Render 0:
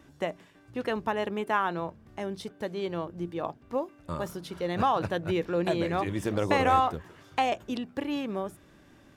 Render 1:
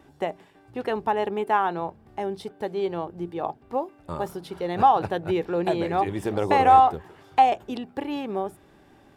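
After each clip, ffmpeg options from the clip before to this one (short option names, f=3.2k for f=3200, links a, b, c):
-af "equalizer=f=400:t=o:w=0.33:g=7,equalizer=f=800:t=o:w=0.33:g=11,equalizer=f=6.3k:t=o:w=0.33:g=-5"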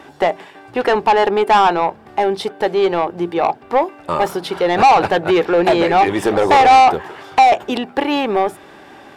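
-filter_complex "[0:a]asplit=2[a][b];[b]highpass=f=720:p=1,volume=21dB,asoftclip=type=tanh:threshold=-6dB[c];[a][c]amix=inputs=2:normalize=0,lowpass=f=4k:p=1,volume=-6dB,asplit=2[d][e];[e]asoftclip=type=tanh:threshold=-15dB,volume=-8.5dB[f];[d][f]amix=inputs=2:normalize=0,volume=1.5dB"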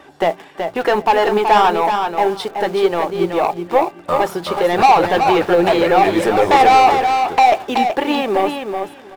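-filter_complex "[0:a]asplit=2[a][b];[b]acrusher=bits=4:mix=0:aa=0.000001,volume=-10dB[c];[a][c]amix=inputs=2:normalize=0,flanger=delay=1.6:depth=4.5:regen=61:speed=1.7:shape=sinusoidal,aecho=1:1:376|752|1128:0.501|0.0802|0.0128,volume=1dB"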